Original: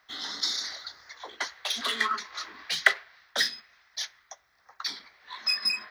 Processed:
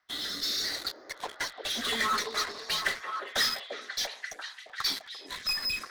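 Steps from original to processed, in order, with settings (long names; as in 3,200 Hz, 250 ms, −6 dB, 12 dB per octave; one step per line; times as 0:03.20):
spectral magnitudes quantised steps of 15 dB
in parallel at −6 dB: fuzz pedal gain 38 dB, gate −44 dBFS
on the sum: rotating-speaker cabinet horn 0.75 Hz
echo through a band-pass that steps 344 ms, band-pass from 450 Hz, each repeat 0.7 octaves, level 0 dB
level −7 dB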